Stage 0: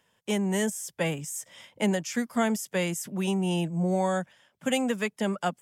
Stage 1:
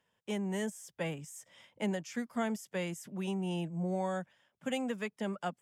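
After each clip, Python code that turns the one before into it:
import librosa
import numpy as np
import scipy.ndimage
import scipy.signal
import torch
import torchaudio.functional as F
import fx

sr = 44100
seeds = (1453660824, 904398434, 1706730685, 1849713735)

y = fx.high_shelf(x, sr, hz=5500.0, db=-7.5)
y = y * librosa.db_to_amplitude(-8.0)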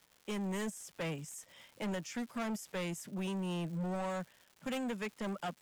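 y = fx.dmg_crackle(x, sr, seeds[0], per_s=300.0, level_db=-49.0)
y = np.clip(y, -10.0 ** (-35.0 / 20.0), 10.0 ** (-35.0 / 20.0))
y = y * librosa.db_to_amplitude(1.0)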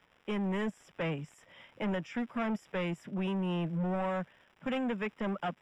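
y = scipy.signal.savgol_filter(x, 25, 4, mode='constant')
y = y * librosa.db_to_amplitude(4.5)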